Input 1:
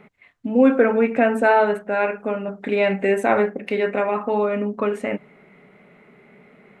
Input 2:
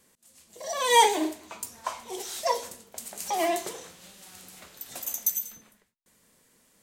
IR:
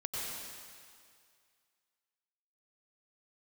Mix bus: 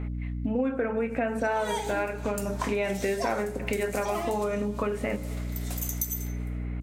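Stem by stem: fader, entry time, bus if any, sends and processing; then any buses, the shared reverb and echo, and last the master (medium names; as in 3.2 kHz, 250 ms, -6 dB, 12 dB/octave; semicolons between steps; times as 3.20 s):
+1.5 dB, 0.00 s, send -22.5 dB, none
0.0 dB, 0.75 s, no send, gain riding within 4 dB 0.5 s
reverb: on, RT60 2.2 s, pre-delay 86 ms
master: hum notches 60/120/180/240/300/360/420/480/540/600 Hz; hum 60 Hz, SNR 12 dB; compression 5:1, threshold -26 dBFS, peak gain reduction 16 dB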